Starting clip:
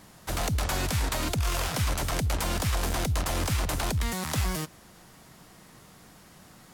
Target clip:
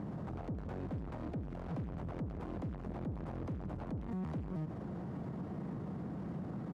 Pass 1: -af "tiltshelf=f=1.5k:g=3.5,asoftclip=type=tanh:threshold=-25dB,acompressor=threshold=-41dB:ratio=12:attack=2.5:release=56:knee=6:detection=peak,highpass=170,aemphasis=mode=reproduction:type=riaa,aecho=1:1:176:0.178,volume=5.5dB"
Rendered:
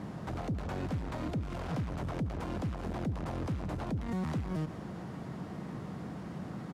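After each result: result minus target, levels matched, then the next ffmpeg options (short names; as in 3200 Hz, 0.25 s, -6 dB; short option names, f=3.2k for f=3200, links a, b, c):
compressor: peak gain reduction -7 dB; 2000 Hz band +5.5 dB
-af "tiltshelf=f=1.5k:g=3.5,asoftclip=type=tanh:threshold=-25dB,acompressor=threshold=-48.5dB:ratio=12:attack=2.5:release=56:knee=6:detection=peak,highpass=170,aemphasis=mode=reproduction:type=riaa,aecho=1:1:176:0.178,volume=5.5dB"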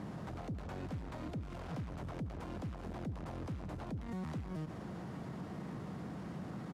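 2000 Hz band +5.5 dB
-af "tiltshelf=f=1.5k:g=11,asoftclip=type=tanh:threshold=-25dB,acompressor=threshold=-48.5dB:ratio=12:attack=2.5:release=56:knee=6:detection=peak,highpass=170,aemphasis=mode=reproduction:type=riaa,aecho=1:1:176:0.178,volume=5.5dB"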